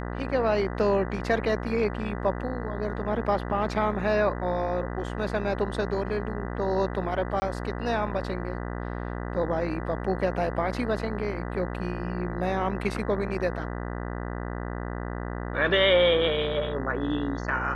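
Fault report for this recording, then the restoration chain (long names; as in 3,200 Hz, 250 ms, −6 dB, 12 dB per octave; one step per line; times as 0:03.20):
mains buzz 60 Hz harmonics 33 −33 dBFS
0:07.40–0:07.42: drop-out 20 ms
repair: hum removal 60 Hz, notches 33
repair the gap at 0:07.40, 20 ms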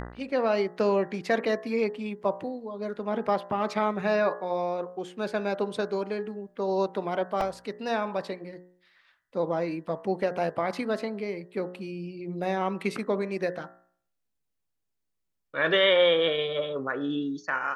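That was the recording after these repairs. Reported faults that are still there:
none of them is left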